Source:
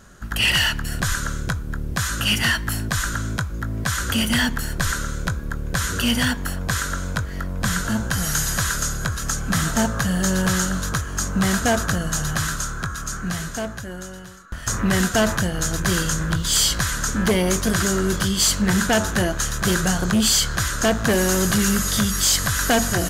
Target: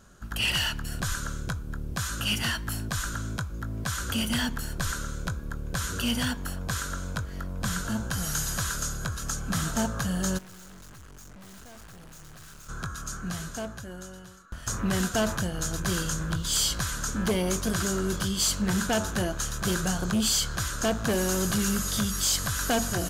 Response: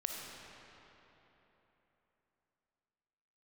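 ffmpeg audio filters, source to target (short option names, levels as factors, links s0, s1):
-filter_complex "[0:a]equalizer=f=1900:t=o:w=0.33:g=-6.5,asplit=3[s0][s1][s2];[s0]afade=t=out:st=10.37:d=0.02[s3];[s1]aeval=exprs='(tanh(100*val(0)+0.6)-tanh(0.6))/100':c=same,afade=t=in:st=10.37:d=0.02,afade=t=out:st=12.68:d=0.02[s4];[s2]afade=t=in:st=12.68:d=0.02[s5];[s3][s4][s5]amix=inputs=3:normalize=0,volume=0.447"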